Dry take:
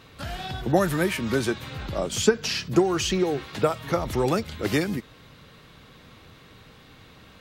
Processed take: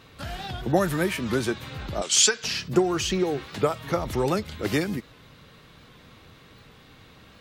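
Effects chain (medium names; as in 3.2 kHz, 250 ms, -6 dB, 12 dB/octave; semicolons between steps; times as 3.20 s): 2.02–2.44 s: frequency weighting ITU-R 468; warped record 78 rpm, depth 100 cents; trim -1 dB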